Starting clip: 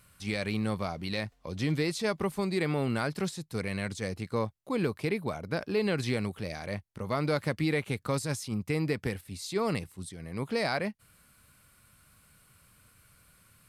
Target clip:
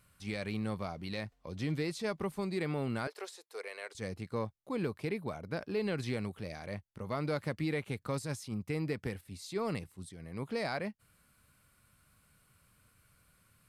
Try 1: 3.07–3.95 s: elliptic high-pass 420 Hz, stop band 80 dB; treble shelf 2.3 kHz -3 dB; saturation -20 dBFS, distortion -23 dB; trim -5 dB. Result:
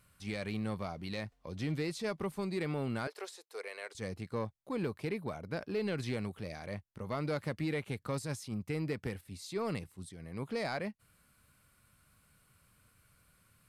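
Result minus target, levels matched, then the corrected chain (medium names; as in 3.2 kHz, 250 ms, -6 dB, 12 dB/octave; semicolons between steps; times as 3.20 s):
saturation: distortion +13 dB
3.07–3.95 s: elliptic high-pass 420 Hz, stop band 80 dB; treble shelf 2.3 kHz -3 dB; saturation -13 dBFS, distortion -35 dB; trim -5 dB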